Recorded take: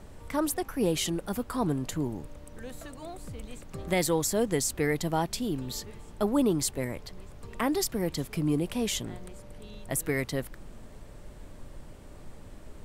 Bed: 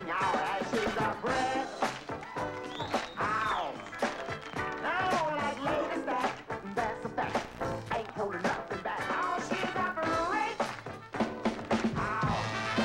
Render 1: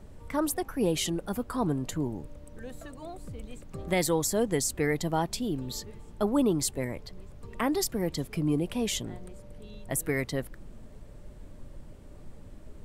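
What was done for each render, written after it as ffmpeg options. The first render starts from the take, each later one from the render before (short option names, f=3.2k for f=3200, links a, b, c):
-af "afftdn=nr=6:nf=-47"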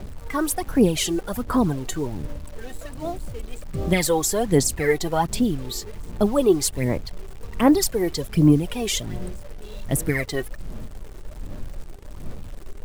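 -filter_complex "[0:a]aphaser=in_gain=1:out_gain=1:delay=2.7:decay=0.65:speed=1.3:type=sinusoidal,asplit=2[a][b];[b]acrusher=bits=6:mix=0:aa=0.000001,volume=-4dB[c];[a][c]amix=inputs=2:normalize=0"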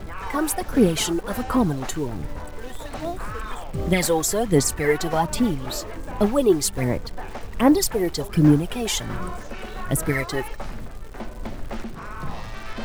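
-filter_complex "[1:a]volume=-5dB[a];[0:a][a]amix=inputs=2:normalize=0"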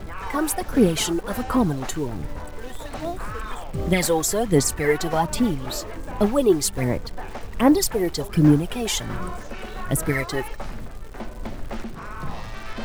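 -af anull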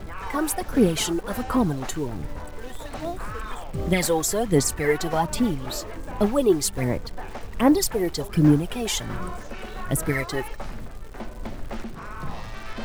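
-af "volume=-1.5dB"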